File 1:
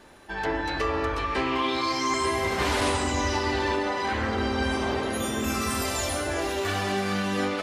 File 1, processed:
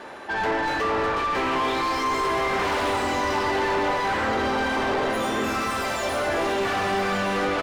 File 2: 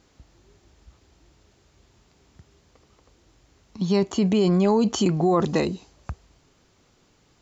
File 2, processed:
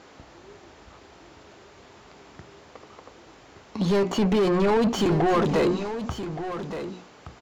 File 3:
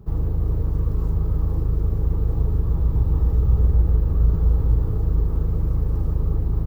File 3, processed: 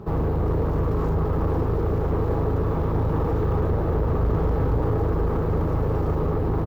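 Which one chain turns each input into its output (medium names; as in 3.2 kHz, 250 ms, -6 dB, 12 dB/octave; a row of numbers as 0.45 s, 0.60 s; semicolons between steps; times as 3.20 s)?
hum notches 60/120/180/240/300/360 Hz; overdrive pedal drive 30 dB, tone 1.2 kHz, clips at -9 dBFS; on a send: delay 1172 ms -10.5 dB; on the sum: normalise loudness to -24 LUFS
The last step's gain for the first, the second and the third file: -5.5 dB, -4.5 dB, -3.5 dB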